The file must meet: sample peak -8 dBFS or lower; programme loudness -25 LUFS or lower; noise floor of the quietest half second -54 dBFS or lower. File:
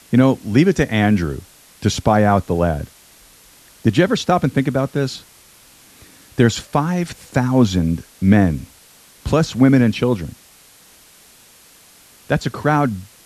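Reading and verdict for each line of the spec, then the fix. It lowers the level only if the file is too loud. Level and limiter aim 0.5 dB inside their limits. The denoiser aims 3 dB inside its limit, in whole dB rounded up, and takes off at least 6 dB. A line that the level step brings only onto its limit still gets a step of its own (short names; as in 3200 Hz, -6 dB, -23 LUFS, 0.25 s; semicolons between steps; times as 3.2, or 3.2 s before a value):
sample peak -2.0 dBFS: fail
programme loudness -17.5 LUFS: fail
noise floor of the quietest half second -48 dBFS: fail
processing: gain -8 dB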